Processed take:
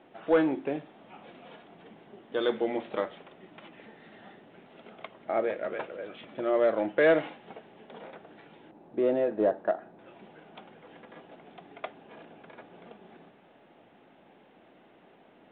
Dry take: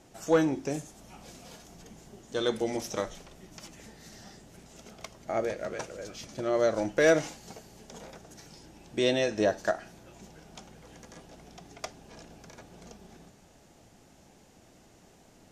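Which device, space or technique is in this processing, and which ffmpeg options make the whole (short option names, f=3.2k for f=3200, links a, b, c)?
telephone: -filter_complex "[0:a]asettb=1/sr,asplit=3[a][b][c];[a]atrim=end=8.714[d];[b]atrim=start=8.71:end=9.99,asetpts=PTS-STARTPTS,afade=t=in:d=0.004:c=qsin,afade=t=out:st=1.276:d=0.004:c=qsin,lowpass=1k[e];[c]atrim=start=9.986[f];[d][e]acrossfade=d=0.004:c1=hsin:c2=qsin[g];[g][f]acrossfade=d=0.004:c1=qsin:c2=hsin,highpass=250,lowpass=3.1k,asoftclip=type=tanh:threshold=-16dB,volume=2.5dB" -ar 8000 -c:a pcm_mulaw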